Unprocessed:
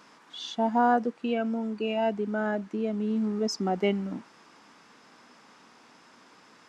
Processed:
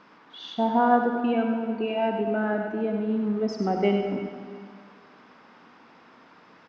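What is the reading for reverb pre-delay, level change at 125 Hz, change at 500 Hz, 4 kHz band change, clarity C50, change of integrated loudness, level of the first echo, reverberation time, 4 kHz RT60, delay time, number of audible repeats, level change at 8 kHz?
39 ms, +2.5 dB, +3.5 dB, −1.5 dB, 3.0 dB, +3.0 dB, −7.0 dB, 2.0 s, 1.8 s, 99 ms, 1, can't be measured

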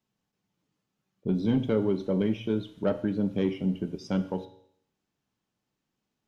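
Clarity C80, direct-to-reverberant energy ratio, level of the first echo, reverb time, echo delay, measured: 16.5 dB, 9.0 dB, no echo audible, 0.65 s, no echo audible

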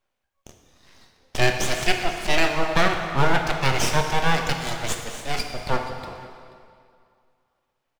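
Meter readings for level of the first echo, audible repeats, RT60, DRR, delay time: −20.0 dB, 1, 2.3 s, 3.0 dB, 483 ms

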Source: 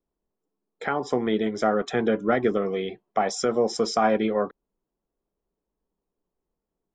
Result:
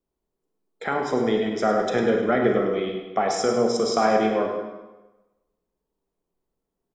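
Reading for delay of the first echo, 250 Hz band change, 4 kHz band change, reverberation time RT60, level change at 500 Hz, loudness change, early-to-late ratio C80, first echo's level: 102 ms, +1.5 dB, +2.0 dB, 1.1 s, +2.5 dB, +2.0 dB, 5.0 dB, −9.5 dB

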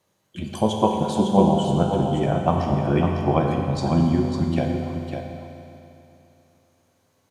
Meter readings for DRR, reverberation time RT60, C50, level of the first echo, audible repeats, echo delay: −1.0 dB, 2.9 s, 0.5 dB, −6.5 dB, 1, 552 ms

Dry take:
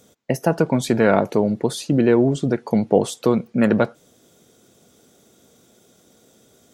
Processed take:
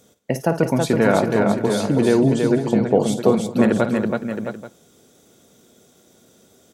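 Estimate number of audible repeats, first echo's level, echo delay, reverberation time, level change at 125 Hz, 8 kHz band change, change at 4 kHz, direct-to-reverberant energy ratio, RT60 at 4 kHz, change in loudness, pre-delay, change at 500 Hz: 6, −11.5 dB, 54 ms, no reverb audible, +1.0 dB, +1.0 dB, +1.0 dB, no reverb audible, no reverb audible, +0.5 dB, no reverb audible, +1.0 dB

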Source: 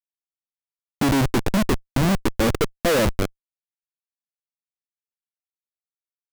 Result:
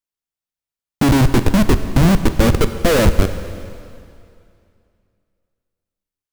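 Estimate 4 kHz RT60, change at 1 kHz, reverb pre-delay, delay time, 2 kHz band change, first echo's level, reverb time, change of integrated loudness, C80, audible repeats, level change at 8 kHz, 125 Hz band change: 2.3 s, +4.0 dB, 5 ms, no echo audible, +4.0 dB, no echo audible, 2.5 s, +6.5 dB, 11.5 dB, no echo audible, +4.0 dB, +9.0 dB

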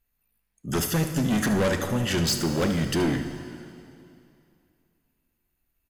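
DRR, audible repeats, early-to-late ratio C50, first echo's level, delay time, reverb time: 6.5 dB, 1, 7.0 dB, −12.5 dB, 75 ms, 2.6 s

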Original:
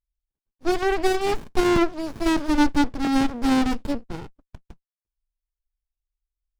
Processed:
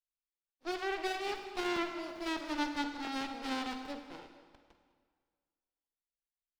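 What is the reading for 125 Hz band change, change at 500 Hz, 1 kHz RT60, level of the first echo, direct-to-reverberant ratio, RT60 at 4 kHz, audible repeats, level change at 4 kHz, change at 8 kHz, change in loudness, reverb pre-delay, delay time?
−26.0 dB, −15.0 dB, 1.8 s, −19.0 dB, 6.5 dB, 1.5 s, 1, −8.0 dB, −13.5 dB, −14.0 dB, 34 ms, 203 ms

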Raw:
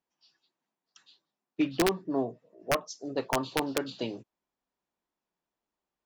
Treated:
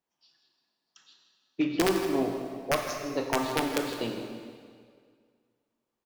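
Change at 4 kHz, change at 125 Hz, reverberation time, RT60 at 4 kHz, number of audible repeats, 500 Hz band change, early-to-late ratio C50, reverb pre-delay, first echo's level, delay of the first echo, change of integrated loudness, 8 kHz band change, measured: +2.0 dB, +1.5 dB, 2.0 s, 1.7 s, 1, +2.0 dB, 4.0 dB, 15 ms, −12.5 dB, 161 ms, +1.5 dB, +1.5 dB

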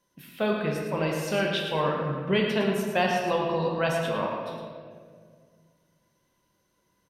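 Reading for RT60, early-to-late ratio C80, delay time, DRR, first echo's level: 1.9 s, 2.5 dB, 110 ms, −1.5 dB, −7.5 dB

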